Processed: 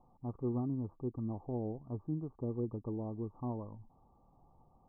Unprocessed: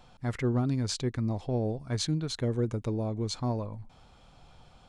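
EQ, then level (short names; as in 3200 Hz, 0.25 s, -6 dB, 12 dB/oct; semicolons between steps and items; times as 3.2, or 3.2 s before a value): rippled Chebyshev low-pass 1200 Hz, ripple 6 dB; -5.0 dB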